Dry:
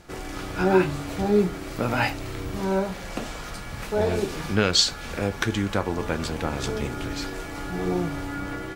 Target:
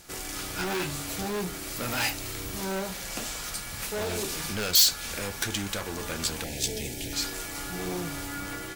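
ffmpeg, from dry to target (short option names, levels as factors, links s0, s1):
-filter_complex "[0:a]volume=13.3,asoftclip=hard,volume=0.075,asettb=1/sr,asplit=3[s0][s1][s2];[s0]atrim=end=6.444[s3];[s1]atrim=start=6.44:end=7.13,asetpts=PTS-STARTPTS,afade=t=in:d=0.004:c=qsin,afade=t=out:st=0.686:d=0.004:c=qsin,asuperstop=centerf=1200:order=4:qfactor=0.98[s4];[s2]atrim=start=7.126[s5];[s3][s4]acrossfade=d=0.004:c1=hsin:c2=qsin[s6];[s6][s5]acrossfade=d=0.004:c1=qsin:c2=hsin,crystalizer=i=5.5:c=0,volume=0.473"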